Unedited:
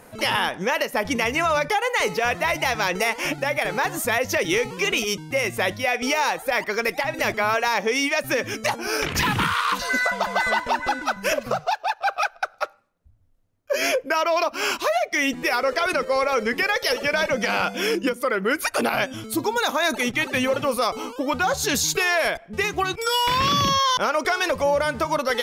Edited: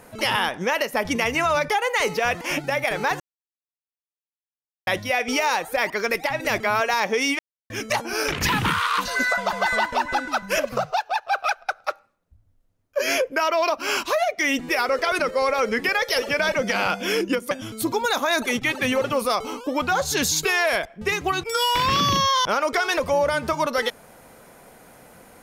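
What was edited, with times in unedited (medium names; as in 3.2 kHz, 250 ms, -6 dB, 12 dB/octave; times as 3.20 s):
2.41–3.15 s: delete
3.94–5.61 s: mute
8.13–8.44 s: mute
18.25–19.03 s: delete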